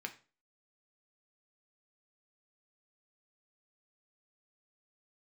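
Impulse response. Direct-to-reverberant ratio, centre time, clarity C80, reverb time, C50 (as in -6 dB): 4.5 dB, 7 ms, 19.5 dB, 0.35 s, 14.5 dB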